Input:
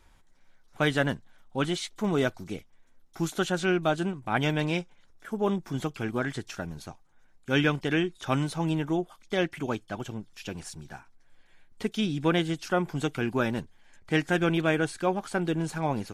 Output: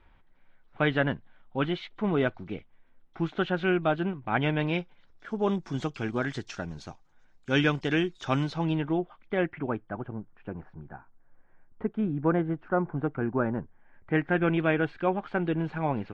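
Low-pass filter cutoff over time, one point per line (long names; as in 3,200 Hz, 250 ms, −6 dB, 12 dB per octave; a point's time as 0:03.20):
low-pass filter 24 dB per octave
0:04.53 3,100 Hz
0:05.62 6,500 Hz
0:08.31 6,500 Hz
0:08.93 3,100 Hz
0:10.15 1,500 Hz
0:13.57 1,500 Hz
0:14.69 2,900 Hz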